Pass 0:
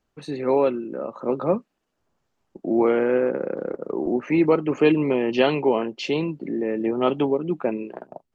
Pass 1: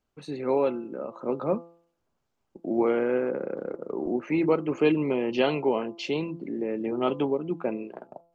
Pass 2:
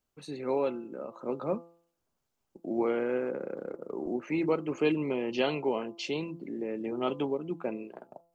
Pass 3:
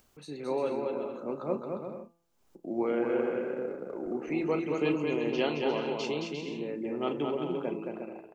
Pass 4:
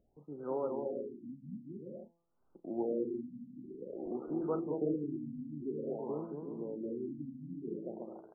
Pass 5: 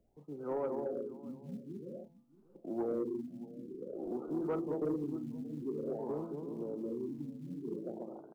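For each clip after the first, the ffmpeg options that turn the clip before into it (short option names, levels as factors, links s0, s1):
-af "bandreject=f=1800:w=15,bandreject=f=169.5:t=h:w=4,bandreject=f=339:t=h:w=4,bandreject=f=508.5:t=h:w=4,bandreject=f=678:t=h:w=4,bandreject=f=847.5:t=h:w=4,bandreject=f=1017:t=h:w=4,bandreject=f=1186.5:t=h:w=4,bandreject=f=1356:t=h:w=4,volume=0.596"
-af "highshelf=f=5200:g=10.5,volume=0.562"
-filter_complex "[0:a]asplit=2[s0][s1];[s1]adelay=34,volume=0.251[s2];[s0][s2]amix=inputs=2:normalize=0,aecho=1:1:220|352|431.2|478.7|507.2:0.631|0.398|0.251|0.158|0.1,acompressor=mode=upward:threshold=0.00355:ratio=2.5,volume=0.794"
-af "afftfilt=real='re*lt(b*sr/1024,280*pow(1600/280,0.5+0.5*sin(2*PI*0.51*pts/sr)))':imag='im*lt(b*sr/1024,280*pow(1600/280,0.5+0.5*sin(2*PI*0.51*pts/sr)))':win_size=1024:overlap=0.75,volume=0.562"
-filter_complex "[0:a]acrossover=split=220[s0][s1];[s0]acrusher=bits=6:mode=log:mix=0:aa=0.000001[s2];[s2][s1]amix=inputs=2:normalize=0,aecho=1:1:629:0.1,asoftclip=type=tanh:threshold=0.0422,volume=1.12"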